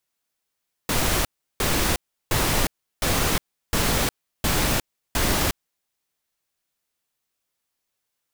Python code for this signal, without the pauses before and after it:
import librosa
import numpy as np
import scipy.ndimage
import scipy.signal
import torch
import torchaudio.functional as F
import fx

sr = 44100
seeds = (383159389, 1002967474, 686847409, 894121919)

y = fx.noise_burst(sr, seeds[0], colour='pink', on_s=0.36, off_s=0.35, bursts=7, level_db=-21.5)